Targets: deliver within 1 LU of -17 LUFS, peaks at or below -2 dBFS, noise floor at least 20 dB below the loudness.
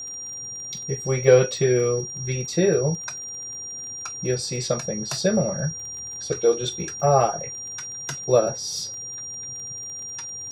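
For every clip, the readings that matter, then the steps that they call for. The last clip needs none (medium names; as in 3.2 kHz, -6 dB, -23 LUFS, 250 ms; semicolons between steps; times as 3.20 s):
tick rate 23 per s; steady tone 5.7 kHz; tone level -32 dBFS; loudness -24.5 LUFS; peak level -3.5 dBFS; loudness target -17.0 LUFS
-> de-click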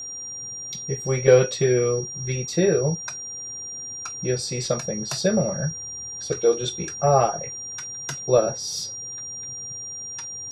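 tick rate 0 per s; steady tone 5.7 kHz; tone level -32 dBFS
-> band-stop 5.7 kHz, Q 30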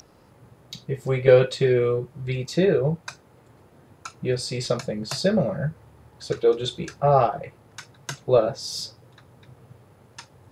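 steady tone not found; loudness -23.5 LUFS; peak level -4.0 dBFS; loudness target -17.0 LUFS
-> trim +6.5 dB; peak limiter -2 dBFS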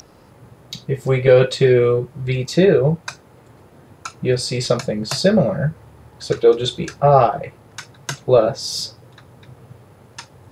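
loudness -17.5 LUFS; peak level -2.0 dBFS; noise floor -49 dBFS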